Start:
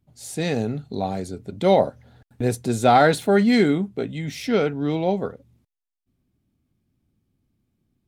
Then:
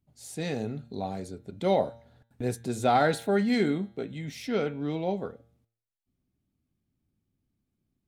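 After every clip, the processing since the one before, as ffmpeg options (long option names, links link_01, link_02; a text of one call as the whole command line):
ffmpeg -i in.wav -af "bandreject=frequency=115.4:width_type=h:width=4,bandreject=frequency=230.8:width_type=h:width=4,bandreject=frequency=346.2:width_type=h:width=4,bandreject=frequency=461.6:width_type=h:width=4,bandreject=frequency=577:width_type=h:width=4,bandreject=frequency=692.4:width_type=h:width=4,bandreject=frequency=807.8:width_type=h:width=4,bandreject=frequency=923.2:width_type=h:width=4,bandreject=frequency=1038.6:width_type=h:width=4,bandreject=frequency=1154:width_type=h:width=4,bandreject=frequency=1269.4:width_type=h:width=4,bandreject=frequency=1384.8:width_type=h:width=4,bandreject=frequency=1500.2:width_type=h:width=4,bandreject=frequency=1615.6:width_type=h:width=4,bandreject=frequency=1731:width_type=h:width=4,bandreject=frequency=1846.4:width_type=h:width=4,bandreject=frequency=1961.8:width_type=h:width=4,bandreject=frequency=2077.2:width_type=h:width=4,bandreject=frequency=2192.6:width_type=h:width=4,bandreject=frequency=2308:width_type=h:width=4,bandreject=frequency=2423.4:width_type=h:width=4,bandreject=frequency=2538.8:width_type=h:width=4,bandreject=frequency=2654.2:width_type=h:width=4,bandreject=frequency=2769.6:width_type=h:width=4,bandreject=frequency=2885:width_type=h:width=4,bandreject=frequency=3000.4:width_type=h:width=4,bandreject=frequency=3115.8:width_type=h:width=4,bandreject=frequency=3231.2:width_type=h:width=4,bandreject=frequency=3346.6:width_type=h:width=4,bandreject=frequency=3462:width_type=h:width=4,bandreject=frequency=3577.4:width_type=h:width=4,bandreject=frequency=3692.8:width_type=h:width=4,bandreject=frequency=3808.2:width_type=h:width=4,bandreject=frequency=3923.6:width_type=h:width=4,bandreject=frequency=4039:width_type=h:width=4,bandreject=frequency=4154.4:width_type=h:width=4,volume=-7.5dB" out.wav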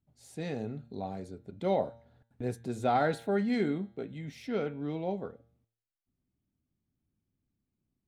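ffmpeg -i in.wav -af "highshelf=frequency=3500:gain=-8.5,volume=-4dB" out.wav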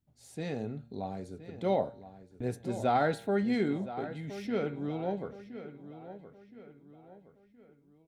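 ffmpeg -i in.wav -filter_complex "[0:a]asplit=2[link_01][link_02];[link_02]adelay=1019,lowpass=frequency=4000:poles=1,volume=-13dB,asplit=2[link_03][link_04];[link_04]adelay=1019,lowpass=frequency=4000:poles=1,volume=0.42,asplit=2[link_05][link_06];[link_06]adelay=1019,lowpass=frequency=4000:poles=1,volume=0.42,asplit=2[link_07][link_08];[link_08]adelay=1019,lowpass=frequency=4000:poles=1,volume=0.42[link_09];[link_01][link_03][link_05][link_07][link_09]amix=inputs=5:normalize=0" out.wav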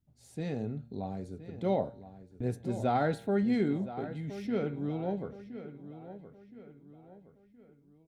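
ffmpeg -i in.wav -af "lowshelf=frequency=340:gain=7.5,volume=-3.5dB" out.wav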